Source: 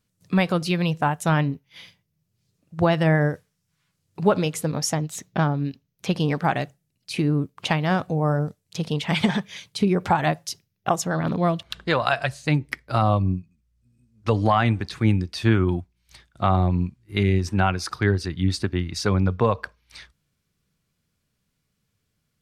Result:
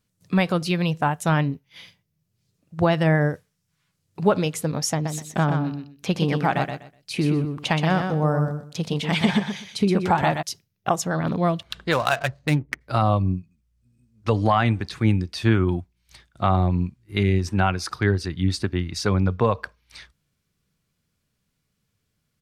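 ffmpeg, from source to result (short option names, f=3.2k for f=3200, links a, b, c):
-filter_complex "[0:a]asplit=3[a][b][c];[a]afade=t=out:st=5.04:d=0.02[d];[b]aecho=1:1:124|248|372:0.501|0.105|0.0221,afade=t=in:st=5.04:d=0.02,afade=t=out:st=10.41:d=0.02[e];[c]afade=t=in:st=10.41:d=0.02[f];[d][e][f]amix=inputs=3:normalize=0,asplit=3[g][h][i];[g]afade=t=out:st=11.91:d=0.02[j];[h]adynamicsmooth=sensitivity=7.5:basefreq=620,afade=t=in:st=11.91:d=0.02,afade=t=out:st=12.8:d=0.02[k];[i]afade=t=in:st=12.8:d=0.02[l];[j][k][l]amix=inputs=3:normalize=0"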